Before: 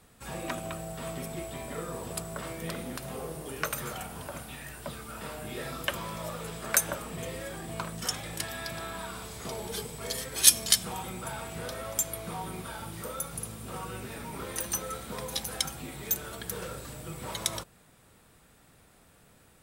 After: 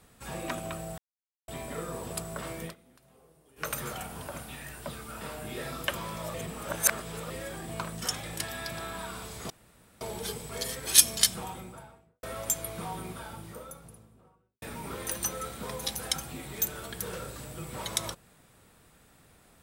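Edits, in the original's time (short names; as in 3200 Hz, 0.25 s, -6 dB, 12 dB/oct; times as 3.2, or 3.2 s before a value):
0.98–1.48 mute
2.62–3.69 dip -22.5 dB, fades 0.13 s
6.34–7.3 reverse
9.5 insert room tone 0.51 s
10.7–11.72 studio fade out
12.26–14.11 studio fade out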